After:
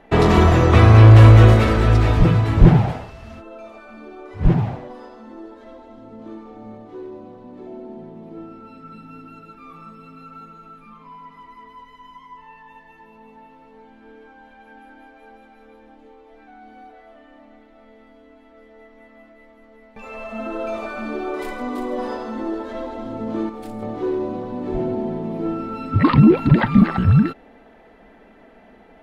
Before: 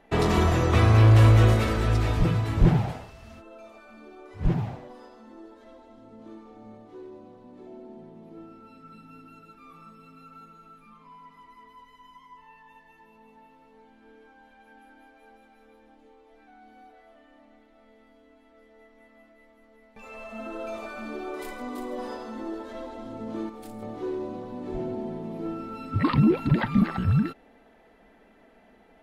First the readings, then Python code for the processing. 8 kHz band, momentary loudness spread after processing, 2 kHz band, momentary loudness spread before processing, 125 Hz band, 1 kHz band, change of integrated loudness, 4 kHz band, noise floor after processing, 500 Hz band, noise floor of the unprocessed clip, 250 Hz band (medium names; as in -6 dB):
no reading, 20 LU, +7.5 dB, 20 LU, +8.5 dB, +8.0 dB, +8.5 dB, +5.5 dB, -49 dBFS, +8.5 dB, -58 dBFS, +8.5 dB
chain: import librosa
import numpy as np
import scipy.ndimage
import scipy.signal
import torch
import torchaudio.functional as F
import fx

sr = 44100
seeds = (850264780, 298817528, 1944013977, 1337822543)

y = fx.high_shelf(x, sr, hz=5200.0, db=-10.0)
y = y * librosa.db_to_amplitude(8.5)